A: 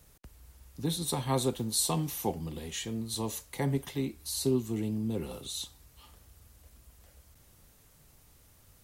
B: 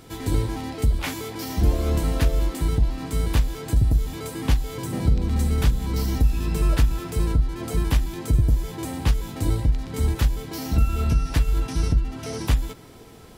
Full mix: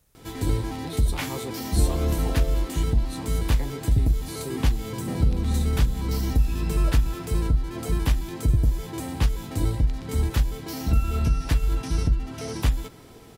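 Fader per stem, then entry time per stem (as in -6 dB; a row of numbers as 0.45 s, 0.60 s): -6.0 dB, -1.5 dB; 0.00 s, 0.15 s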